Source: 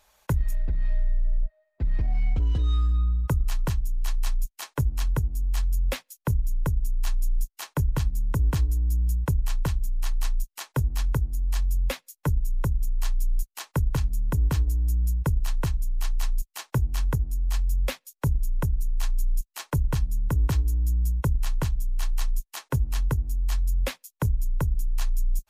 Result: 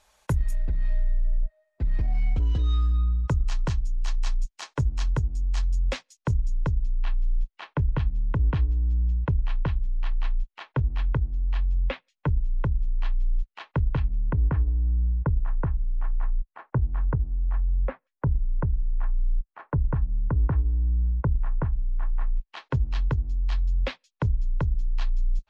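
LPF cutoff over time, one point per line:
LPF 24 dB/oct
2.09 s 11000 Hz
2.66 s 6700 Hz
6.44 s 6700 Hz
7.06 s 3200 Hz
13.93 s 3200 Hz
14.69 s 1600 Hz
22.18 s 1600 Hz
22.66 s 4300 Hz

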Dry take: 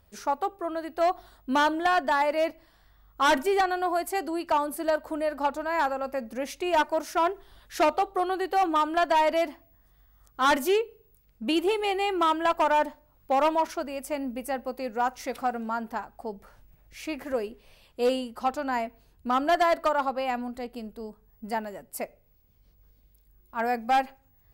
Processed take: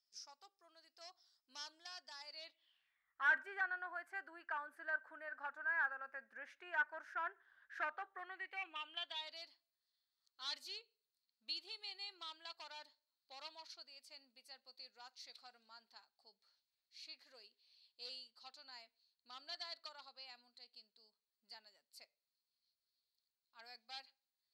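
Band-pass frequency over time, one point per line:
band-pass, Q 10
2.2 s 5200 Hz
3.29 s 1600 Hz
8.05 s 1600 Hz
9.39 s 4300 Hz

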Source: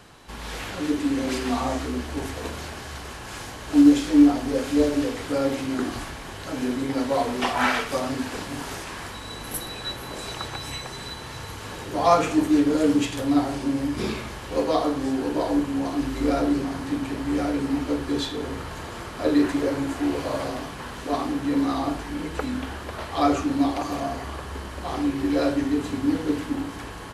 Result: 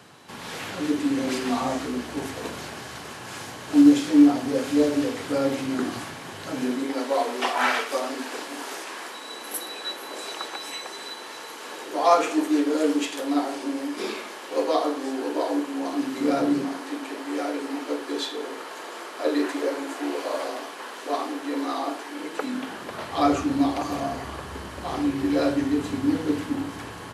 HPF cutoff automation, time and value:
HPF 24 dB/oct
6.54 s 110 Hz
6.98 s 300 Hz
15.76 s 300 Hz
16.54 s 120 Hz
16.83 s 330 Hz
22.16 s 330 Hz
23.34 s 78 Hz

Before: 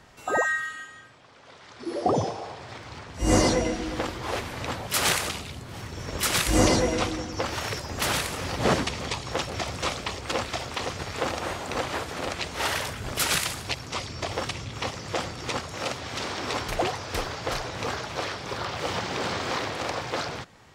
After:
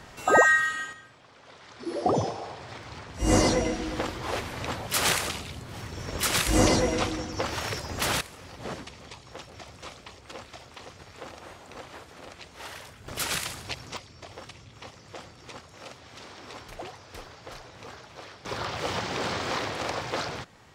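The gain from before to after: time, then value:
+6 dB
from 0.93 s -1 dB
from 8.21 s -14 dB
from 13.08 s -5 dB
from 13.97 s -13.5 dB
from 18.45 s -1 dB

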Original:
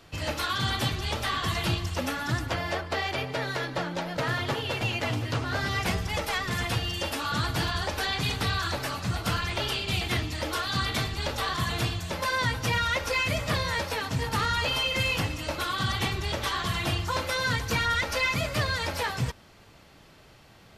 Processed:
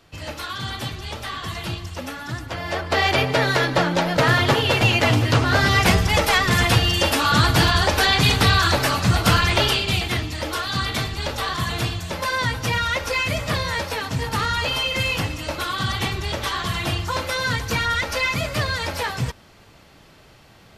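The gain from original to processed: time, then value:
2.48 s -1.5 dB
3.05 s +11.5 dB
9.59 s +11.5 dB
10.14 s +4 dB

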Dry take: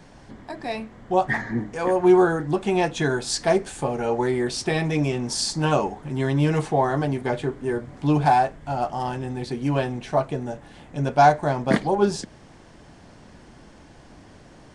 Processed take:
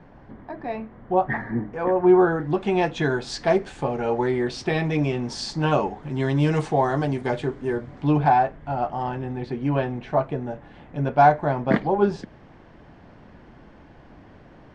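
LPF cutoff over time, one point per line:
2.08 s 1700 Hz
2.63 s 3900 Hz
5.92 s 3900 Hz
6.43 s 7200 Hz
7.3 s 7200 Hz
7.92 s 4200 Hz
8.29 s 2500 Hz

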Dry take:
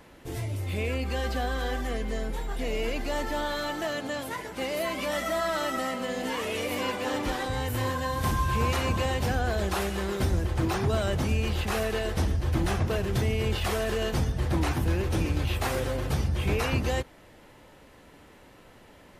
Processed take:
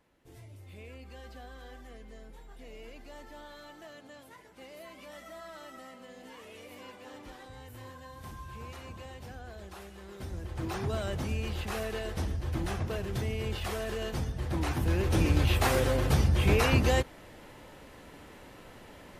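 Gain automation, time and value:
10.01 s -18 dB
10.78 s -6.5 dB
14.45 s -6.5 dB
15.32 s +2.5 dB

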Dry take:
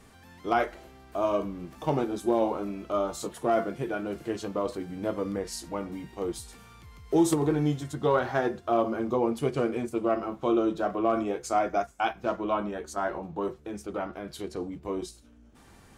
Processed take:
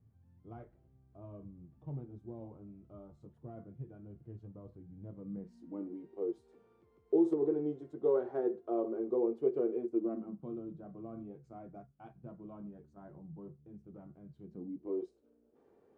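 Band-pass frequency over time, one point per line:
band-pass, Q 4.2
5.01 s 110 Hz
6.06 s 400 Hz
9.81 s 400 Hz
10.6 s 140 Hz
14.39 s 140 Hz
15.04 s 440 Hz

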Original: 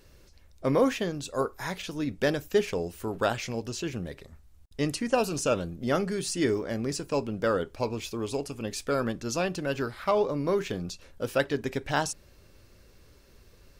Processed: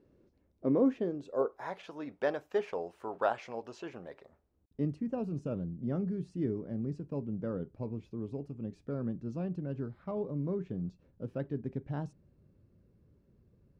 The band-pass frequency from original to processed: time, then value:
band-pass, Q 1.4
0.89 s 280 Hz
1.85 s 820 Hz
4.19 s 820 Hz
4.93 s 160 Hz

